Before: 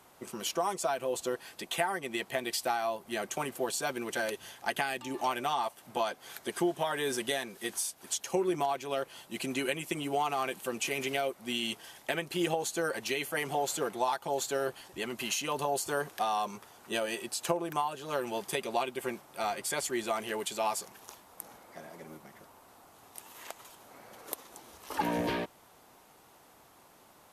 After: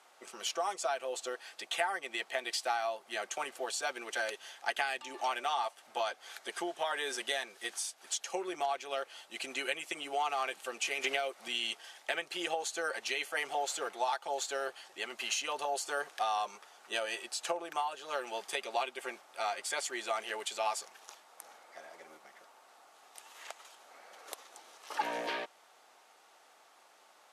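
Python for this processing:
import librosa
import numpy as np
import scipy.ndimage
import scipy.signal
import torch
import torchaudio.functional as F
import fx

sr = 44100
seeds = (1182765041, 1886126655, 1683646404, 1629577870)

y = fx.bandpass_edges(x, sr, low_hz=630.0, high_hz=7700.0)
y = fx.notch(y, sr, hz=1000.0, q=10.0)
y = fx.band_squash(y, sr, depth_pct=100, at=(11.04, 11.48))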